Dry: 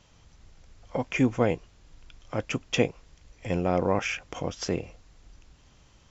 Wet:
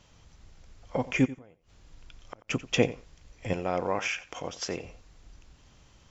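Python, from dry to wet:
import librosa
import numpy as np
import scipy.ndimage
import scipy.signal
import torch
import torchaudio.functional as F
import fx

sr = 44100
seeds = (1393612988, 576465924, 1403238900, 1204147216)

y = fx.gate_flip(x, sr, shuts_db=-26.0, range_db=-31, at=(1.24, 2.48), fade=0.02)
y = fx.low_shelf(y, sr, hz=380.0, db=-11.5, at=(3.53, 4.84))
y = fx.echo_feedback(y, sr, ms=89, feedback_pct=15, wet_db=-17)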